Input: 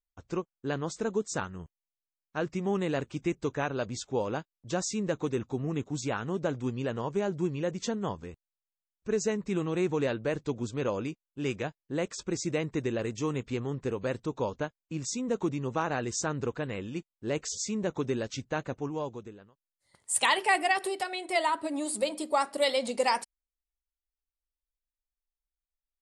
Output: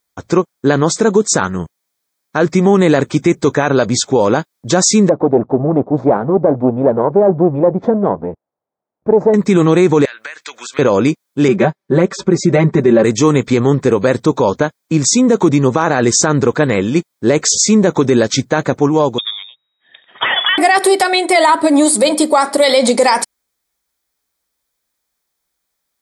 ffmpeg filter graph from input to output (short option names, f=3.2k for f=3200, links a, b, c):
-filter_complex "[0:a]asettb=1/sr,asplit=3[a][b][c];[a]atrim=end=5.094[d];[b]atrim=start=5.09:end=9.34,asetpts=PTS-STARTPTS,afade=t=in:d=0.004:c=qsin,afade=t=out:st=4.246:d=0.004:c=qsin,aeval=exprs='if(lt(val(0),0),0.251*val(0),val(0))':c=same,lowpass=f=700:t=q:w=1.7[e];[c]atrim=start=9.336[f];[d][e]acrossfade=d=0.004:c1=hsin:c2=qsin[g];[g][f]acrossfade=d=0.004:c1=qsin:c2=hsin,asettb=1/sr,asplit=3[h][i][j];[h]atrim=end=10.054[k];[i]atrim=start=10.05:end=10.79,asetpts=PTS-STARTPTS,afade=t=in:d=0.004:c=qsin,afade=t=out:st=0.736:d=0.004:c=qsin,highpass=f=1.7k:t=q:w=1.8,acompressor=threshold=-47dB:ratio=16:attack=3.2:release=140:knee=1:detection=peak,equalizer=f=2.7k:t=o:w=0.24:g=6[l];[j]atrim=start=10.786[m];[k][l]acrossfade=d=0.004:c1=hsin:c2=qsin[n];[n][m]acrossfade=d=0.004:c1=qsin:c2=hsin,asettb=1/sr,asplit=3[o][p][q];[o]atrim=end=11.484[r];[p]atrim=start=11.48:end=13.04,asetpts=PTS-STARTPTS,afade=t=in:d=0.004:c=qsin,afade=t=out:st=1.556:d=0.004:c=qsin,lowpass=f=1.2k:p=1,aecho=1:1:5.2:0.96,atrim=end_sample=68796[s];[q]atrim=start=13.036[t];[r][s]acrossfade=d=0.004:c1=hsin:c2=qsin[u];[u][t]acrossfade=d=0.004:c1=qsin:c2=hsin,asettb=1/sr,asplit=3[v][w][x];[v]atrim=end=19.184[y];[w]atrim=start=19.18:end=20.58,asetpts=PTS-STARTPTS,afade=t=in:d=0.004:c=qsin,afade=t=out:st=1.396:d=0.004:c=qsin,acompressor=threshold=-30dB:ratio=10:attack=3.2:release=140:knee=1:detection=peak,lowpass=f=3.2k:t=q:w=0.5098,lowpass=f=3.2k:t=q:w=0.6013,lowpass=f=3.2k:t=q:w=0.9,lowpass=f=3.2k:t=q:w=2.563,afreqshift=-3800,bandreject=f=47.87:t=h:w=4,bandreject=f=95.74:t=h:w=4,bandreject=f=143.61:t=h:w=4[z];[x]atrim=start=20.576[aa];[y][z]acrossfade=d=0.004:c1=hsin:c2=qsin[ab];[ab][aa]acrossfade=d=0.004:c1=qsin:c2=hsin,highpass=130,bandreject=f=2.8k:w=5.2,alimiter=level_in=24dB:limit=-1dB:release=50:level=0:latency=1,volume=-1dB"